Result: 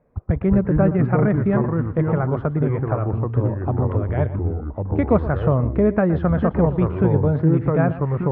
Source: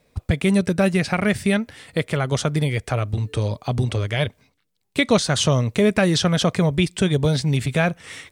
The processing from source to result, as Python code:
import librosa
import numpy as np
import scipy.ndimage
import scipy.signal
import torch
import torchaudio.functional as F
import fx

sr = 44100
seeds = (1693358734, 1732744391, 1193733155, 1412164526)

p1 = scipy.signal.sosfilt(scipy.signal.butter(4, 1400.0, 'lowpass', fs=sr, output='sos'), x)
p2 = fx.echo_pitch(p1, sr, ms=144, semitones=-4, count=2, db_per_echo=-3.0)
y = p2 + fx.echo_single(p2, sr, ms=118, db=-15.0, dry=0)